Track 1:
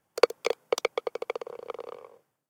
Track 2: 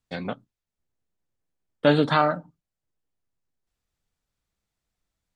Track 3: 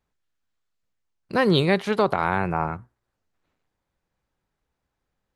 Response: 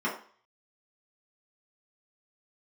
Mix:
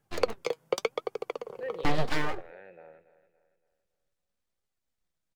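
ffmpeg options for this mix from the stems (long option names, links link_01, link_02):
-filter_complex "[0:a]equalizer=frequency=120:width_type=o:width=1.8:gain=12,volume=1dB[link_01];[1:a]acrossover=split=330[link_02][link_03];[link_03]acompressor=threshold=-25dB:ratio=2[link_04];[link_02][link_04]amix=inputs=2:normalize=0,aeval=exprs='abs(val(0))':channel_layout=same,volume=1dB[link_05];[2:a]asplit=3[link_06][link_07][link_08];[link_06]bandpass=frequency=530:width_type=q:width=8,volume=0dB[link_09];[link_07]bandpass=frequency=1840:width_type=q:width=8,volume=-6dB[link_10];[link_08]bandpass=frequency=2480:width_type=q:width=8,volume=-9dB[link_11];[link_09][link_10][link_11]amix=inputs=3:normalize=0,adelay=250,volume=-12dB,asplit=2[link_12][link_13];[link_13]volume=-14.5dB[link_14];[link_01][link_05]amix=inputs=2:normalize=0,flanger=delay=2.4:depth=3.9:regen=59:speed=0.86:shape=sinusoidal,alimiter=limit=-11dB:level=0:latency=1:release=440,volume=0dB[link_15];[link_14]aecho=0:1:283|566|849|1132|1415|1698:1|0.41|0.168|0.0689|0.0283|0.0116[link_16];[link_12][link_15][link_16]amix=inputs=3:normalize=0"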